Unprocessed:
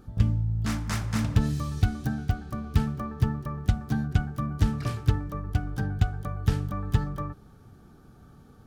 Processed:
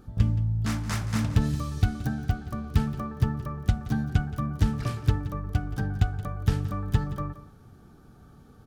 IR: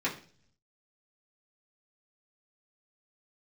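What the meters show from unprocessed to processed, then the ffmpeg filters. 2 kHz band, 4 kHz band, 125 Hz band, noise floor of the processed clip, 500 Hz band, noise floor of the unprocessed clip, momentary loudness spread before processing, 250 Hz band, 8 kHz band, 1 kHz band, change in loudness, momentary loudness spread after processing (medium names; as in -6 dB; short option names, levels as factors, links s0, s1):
0.0 dB, 0.0 dB, +0.5 dB, -52 dBFS, 0.0 dB, -53 dBFS, 6 LU, 0.0 dB, 0.0 dB, 0.0 dB, 0.0 dB, 6 LU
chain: -af "aecho=1:1:174:0.168"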